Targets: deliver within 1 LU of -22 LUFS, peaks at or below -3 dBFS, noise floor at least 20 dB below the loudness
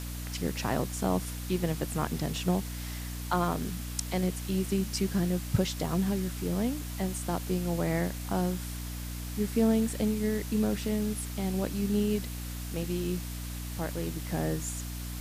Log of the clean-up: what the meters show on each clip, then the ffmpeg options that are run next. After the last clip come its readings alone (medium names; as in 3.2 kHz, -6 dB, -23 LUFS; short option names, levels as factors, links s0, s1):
hum 60 Hz; highest harmonic 300 Hz; hum level -35 dBFS; noise floor -38 dBFS; noise floor target -52 dBFS; loudness -31.5 LUFS; peak level -13.5 dBFS; loudness target -22.0 LUFS
-> -af "bandreject=f=60:t=h:w=6,bandreject=f=120:t=h:w=6,bandreject=f=180:t=h:w=6,bandreject=f=240:t=h:w=6,bandreject=f=300:t=h:w=6"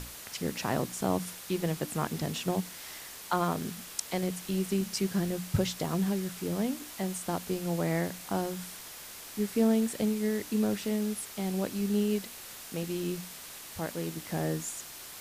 hum not found; noise floor -46 dBFS; noise floor target -53 dBFS
-> -af "afftdn=nr=7:nf=-46"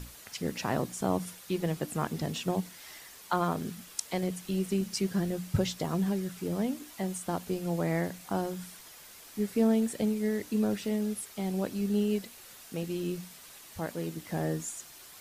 noise floor -51 dBFS; noise floor target -53 dBFS
-> -af "afftdn=nr=6:nf=-51"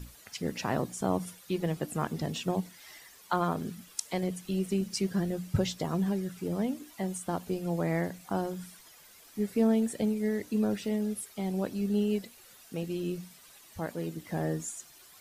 noise floor -55 dBFS; loudness -32.5 LUFS; peak level -14.0 dBFS; loudness target -22.0 LUFS
-> -af "volume=3.35"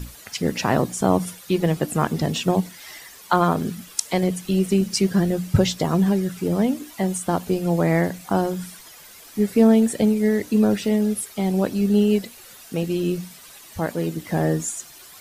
loudness -22.0 LUFS; peak level -3.5 dBFS; noise floor -45 dBFS